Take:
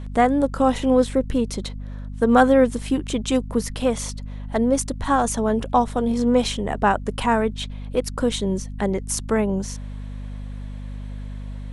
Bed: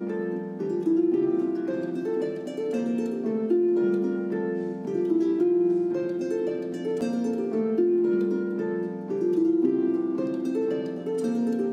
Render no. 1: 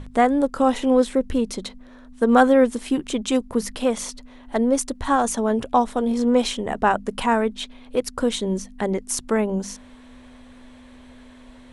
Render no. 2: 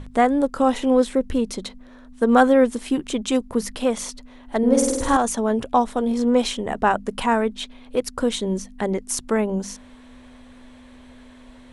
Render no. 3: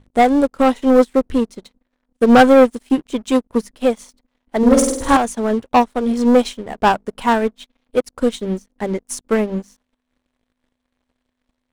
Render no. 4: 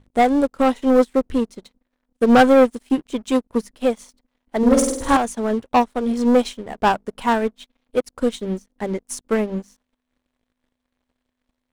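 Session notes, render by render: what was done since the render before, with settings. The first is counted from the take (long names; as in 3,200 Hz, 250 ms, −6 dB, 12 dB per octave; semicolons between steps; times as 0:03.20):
mains-hum notches 50/100/150/200 Hz
0:04.58–0:05.17: flutter between parallel walls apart 8.6 metres, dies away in 1.2 s
leveller curve on the samples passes 3; expander for the loud parts 2.5 to 1, over −23 dBFS
level −3 dB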